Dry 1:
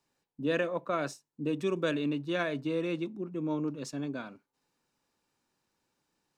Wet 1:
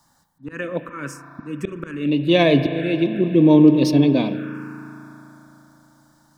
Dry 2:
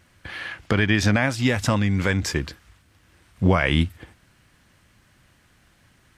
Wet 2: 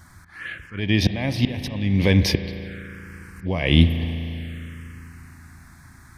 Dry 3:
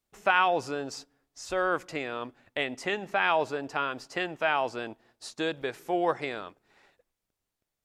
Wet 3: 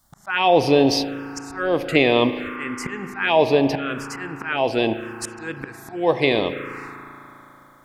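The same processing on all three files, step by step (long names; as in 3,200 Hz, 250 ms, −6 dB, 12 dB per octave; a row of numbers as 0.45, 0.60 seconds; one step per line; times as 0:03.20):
volume swells 716 ms
spring reverb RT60 3.8 s, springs 36 ms, chirp 60 ms, DRR 8.5 dB
phaser swept by the level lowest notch 430 Hz, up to 1,400 Hz, full sweep at −36 dBFS
normalise the peak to −2 dBFS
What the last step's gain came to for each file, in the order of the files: +21.0, +11.0, +22.5 decibels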